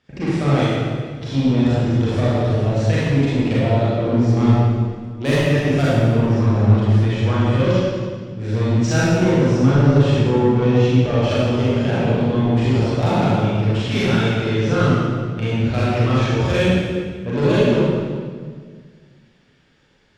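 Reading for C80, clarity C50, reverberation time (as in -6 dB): -1.5 dB, -4.5 dB, 1.7 s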